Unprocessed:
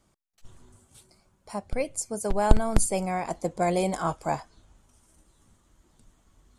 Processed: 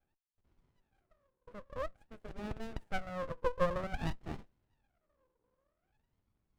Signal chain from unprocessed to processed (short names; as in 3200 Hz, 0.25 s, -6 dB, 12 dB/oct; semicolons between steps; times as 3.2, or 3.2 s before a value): bell 6100 Hz -14 dB 0.56 oct; wah 0.51 Hz 490–1200 Hz, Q 21; running maximum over 33 samples; gain +10 dB